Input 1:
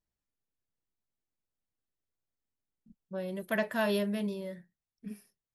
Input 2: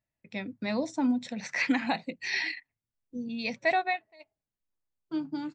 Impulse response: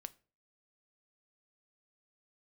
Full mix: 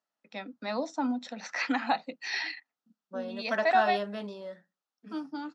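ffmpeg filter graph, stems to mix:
-filter_complex "[0:a]volume=-1dB,asplit=2[a][b];[b]volume=-9dB[c];[1:a]volume=-0.5dB[d];[2:a]atrim=start_sample=2205[e];[c][e]afir=irnorm=-1:irlink=0[f];[a][d][f]amix=inputs=3:normalize=0,highpass=f=250:w=0.5412,highpass=f=250:w=1.3066,equalizer=f=360:t=q:w=4:g=-8,equalizer=f=790:t=q:w=4:g=5,equalizer=f=1.3k:t=q:w=4:g=9,equalizer=f=2.2k:t=q:w=4:g=-7,lowpass=f=6.6k:w=0.5412,lowpass=f=6.6k:w=1.3066"

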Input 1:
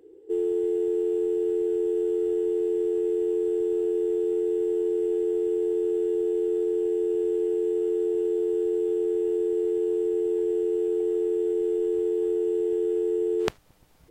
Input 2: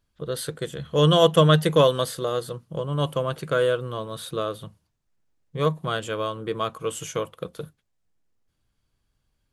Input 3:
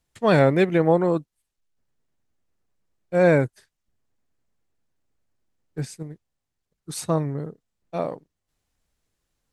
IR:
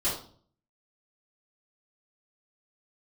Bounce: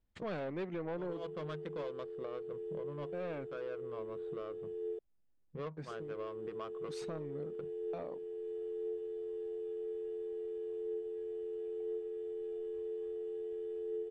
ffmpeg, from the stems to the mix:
-filter_complex "[0:a]aecho=1:1:1.7:0.84,acompressor=threshold=-34dB:ratio=2,flanger=delay=9.2:depth=3.2:regen=84:speed=0.33:shape=triangular,adelay=800,volume=-4.5dB,asplit=3[a][b][c];[a]atrim=end=4.99,asetpts=PTS-STARTPTS,afade=t=out:st=4.986:d=0.004:c=hsin[d];[b]atrim=start=4.99:end=5.91,asetpts=PTS-STARTPTS,volume=0[e];[c]atrim=start=5.91,asetpts=PTS-STARTPTS,afade=t=in:d=0.004:c=hsin[f];[d][e][f]concat=n=3:v=0:a=1[g];[1:a]adynamicsmooth=sensitivity=1.5:basefreq=660,volume=-4.5dB[h];[2:a]agate=range=-11dB:threshold=-48dB:ratio=16:detection=peak,acontrast=77,volume=-8dB,asplit=2[i][j];[j]apad=whole_len=420091[k];[h][k]sidechaincompress=threshold=-37dB:ratio=8:attack=16:release=107[l];[l][i]amix=inputs=2:normalize=0,asoftclip=type=tanh:threshold=-18.5dB,acompressor=threshold=-43dB:ratio=2,volume=0dB[m];[g][m]amix=inputs=2:normalize=0,lowpass=3.9k,equalizer=f=120:t=o:w=0.64:g=-9,alimiter=level_in=8.5dB:limit=-24dB:level=0:latency=1:release=498,volume=-8.5dB"

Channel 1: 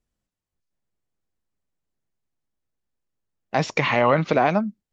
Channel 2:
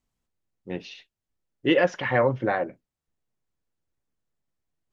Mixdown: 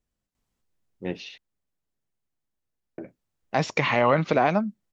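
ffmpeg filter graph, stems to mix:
-filter_complex "[0:a]volume=-2dB[a];[1:a]alimiter=limit=-16.5dB:level=0:latency=1:release=343,adelay=350,volume=2dB,asplit=3[b][c][d];[b]atrim=end=1.38,asetpts=PTS-STARTPTS,afade=t=out:st=1.376:d=0.004:c=hsin[e];[c]atrim=start=1.38:end=2.98,asetpts=PTS-STARTPTS,volume=0[f];[d]atrim=start=2.98,asetpts=PTS-STARTPTS,afade=t=in:d=0.004:c=hsin[g];[e][f][g]concat=n=3:v=0:a=1[h];[a][h]amix=inputs=2:normalize=0"

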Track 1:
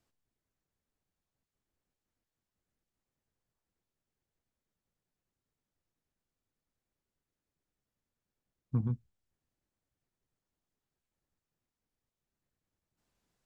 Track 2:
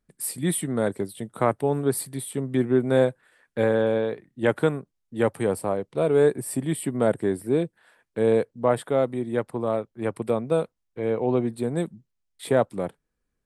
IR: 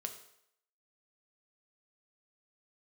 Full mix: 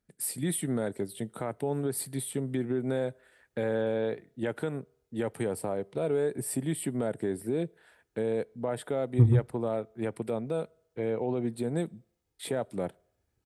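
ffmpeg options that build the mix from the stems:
-filter_complex "[0:a]lowshelf=f=330:g=9.5,aecho=1:1:2.4:0.85,adelay=450,volume=-1.5dB,asplit=2[a][b];[b]volume=-6dB[c];[1:a]alimiter=limit=-19dB:level=0:latency=1:release=135,equalizer=f=1.1k:w=7.7:g=-8.5,volume=-2.5dB,asplit=2[d][e];[e]volume=-18dB[f];[2:a]atrim=start_sample=2205[g];[c][f]amix=inputs=2:normalize=0[h];[h][g]afir=irnorm=-1:irlink=0[i];[a][d][i]amix=inputs=3:normalize=0,highpass=48"

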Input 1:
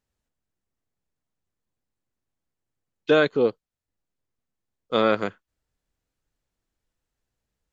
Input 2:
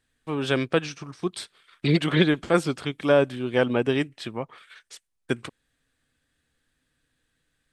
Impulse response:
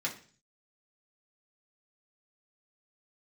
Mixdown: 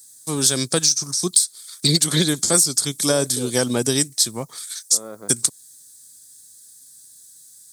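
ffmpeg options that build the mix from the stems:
-filter_complex "[0:a]acompressor=threshold=-20dB:ratio=2.5,lowpass=1.1k,volume=-9.5dB[a];[1:a]highpass=97,bass=f=250:g=6,treble=f=4k:g=4,volume=1dB[b];[a][b]amix=inputs=2:normalize=0,aexciter=amount=15:drive=9.5:freq=4.5k,highpass=55,acompressor=threshold=-14dB:ratio=5"

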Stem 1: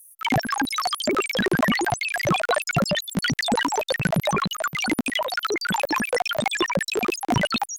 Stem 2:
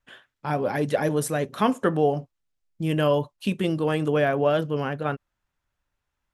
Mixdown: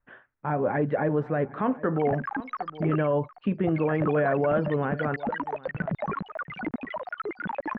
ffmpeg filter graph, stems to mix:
-filter_complex "[0:a]adelay=1750,volume=-7.5dB,asplit=3[a][b][c];[a]atrim=end=3.1,asetpts=PTS-STARTPTS,afade=t=out:st=3.096:d=0.004:c=hsin[d];[b]atrim=start=3.1:end=3.67,asetpts=PTS-STARTPTS,volume=0[e];[c]atrim=start=3.67,asetpts=PTS-STARTPTS,afade=t=in:d=0.004:c=hsin[f];[d][e][f]concat=n=3:v=0:a=1,asplit=2[g][h];[h]volume=-19dB[i];[1:a]volume=0.5dB,asplit=2[j][k];[k]volume=-21.5dB[l];[i][l]amix=inputs=2:normalize=0,aecho=0:1:760:1[m];[g][j][m]amix=inputs=3:normalize=0,lowpass=f=1.9k:w=0.5412,lowpass=f=1.9k:w=1.3066,alimiter=limit=-15.5dB:level=0:latency=1:release=56"

